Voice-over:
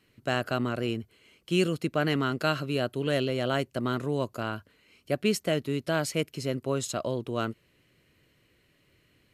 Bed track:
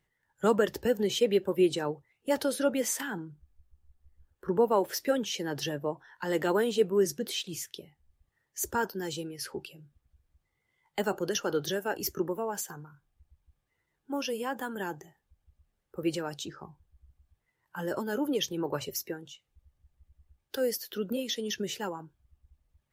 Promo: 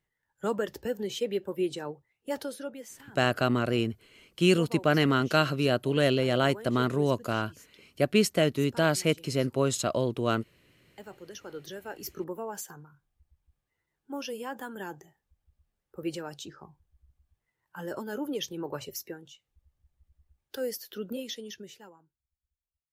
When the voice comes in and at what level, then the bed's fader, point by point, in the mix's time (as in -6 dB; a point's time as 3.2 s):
2.90 s, +3.0 dB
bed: 2.38 s -5 dB
2.92 s -16.5 dB
11.07 s -16.5 dB
12.35 s -3.5 dB
21.25 s -3.5 dB
22.34 s -26 dB